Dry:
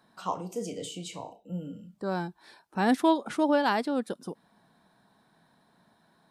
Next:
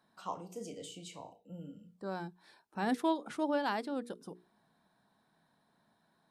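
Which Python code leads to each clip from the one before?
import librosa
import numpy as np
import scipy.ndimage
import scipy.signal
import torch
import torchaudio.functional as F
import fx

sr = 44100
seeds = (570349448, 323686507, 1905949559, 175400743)

y = fx.hum_notches(x, sr, base_hz=60, count=8)
y = y * 10.0 ** (-8.0 / 20.0)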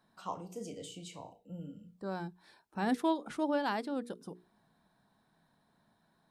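y = fx.low_shelf(x, sr, hz=97.0, db=11.0)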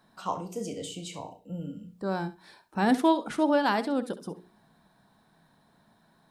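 y = fx.echo_feedback(x, sr, ms=67, feedback_pct=16, wet_db=-14.0)
y = y * 10.0 ** (8.0 / 20.0)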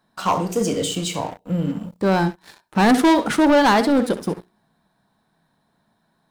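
y = fx.leveller(x, sr, passes=3)
y = y * 10.0 ** (3.0 / 20.0)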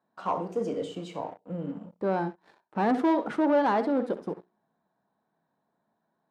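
y = fx.bandpass_q(x, sr, hz=540.0, q=0.68)
y = y * 10.0 ** (-7.0 / 20.0)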